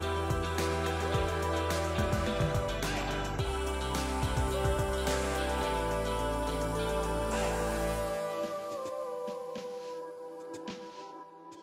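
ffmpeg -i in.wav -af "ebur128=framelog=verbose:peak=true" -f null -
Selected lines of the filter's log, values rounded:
Integrated loudness:
  I:         -32.8 LUFS
  Threshold: -43.2 LUFS
Loudness range:
  LRA:         5.6 LU
  Threshold: -52.9 LUFS
  LRA low:   -37.4 LUFS
  LRA high:  -31.8 LUFS
True peak:
  Peak:      -17.5 dBFS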